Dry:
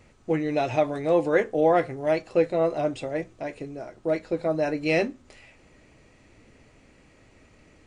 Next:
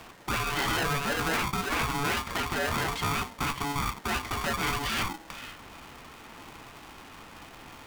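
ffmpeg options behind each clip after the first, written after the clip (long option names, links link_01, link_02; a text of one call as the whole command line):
ffmpeg -i in.wav -filter_complex "[0:a]afftfilt=real='re*lt(hypot(re,im),0.141)':imag='im*lt(hypot(re,im),0.141)':win_size=1024:overlap=0.75,asplit=2[link_01][link_02];[link_02]highpass=frequency=720:poles=1,volume=20dB,asoftclip=type=tanh:threshold=-18.5dB[link_03];[link_01][link_03]amix=inputs=2:normalize=0,lowpass=frequency=1200:poles=1,volume=-6dB,aeval=exprs='val(0)*sgn(sin(2*PI*570*n/s))':channel_layout=same,volume=2.5dB" out.wav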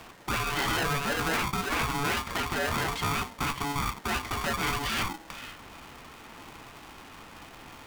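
ffmpeg -i in.wav -af anull out.wav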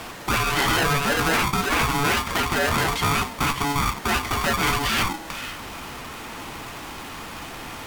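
ffmpeg -i in.wav -af "aeval=exprs='val(0)+0.5*0.00708*sgn(val(0))':channel_layout=same,volume=7dB" -ar 44100 -c:a libmp3lame -b:a 80k out.mp3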